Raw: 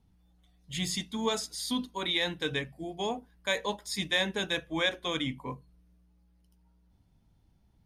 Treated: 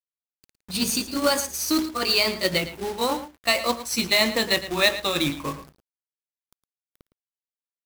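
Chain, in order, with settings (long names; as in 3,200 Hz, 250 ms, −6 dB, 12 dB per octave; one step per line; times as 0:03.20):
pitch glide at a constant tempo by +5 semitones ending unshifted
log-companded quantiser 4 bits
slap from a distant wall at 19 metres, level −13 dB
level +9 dB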